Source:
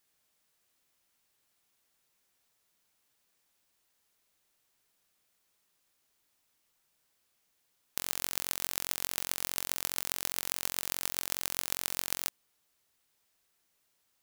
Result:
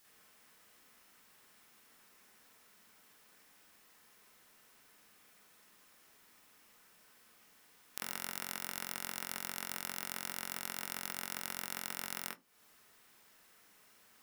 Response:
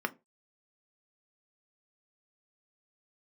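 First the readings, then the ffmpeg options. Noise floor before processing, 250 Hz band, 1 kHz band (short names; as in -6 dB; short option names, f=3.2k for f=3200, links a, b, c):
-76 dBFS, -1.0 dB, -1.5 dB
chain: -filter_complex "[0:a]acompressor=threshold=-46dB:ratio=5,asplit=2[a][b];[1:a]atrim=start_sample=2205,adelay=46[c];[b][c]afir=irnorm=-1:irlink=0,volume=-0.5dB[d];[a][d]amix=inputs=2:normalize=0,volume=8.5dB"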